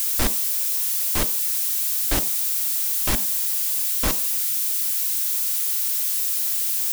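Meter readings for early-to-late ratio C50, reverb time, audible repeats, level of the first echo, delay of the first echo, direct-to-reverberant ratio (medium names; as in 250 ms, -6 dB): 18.5 dB, 0.50 s, no echo, no echo, no echo, 11.5 dB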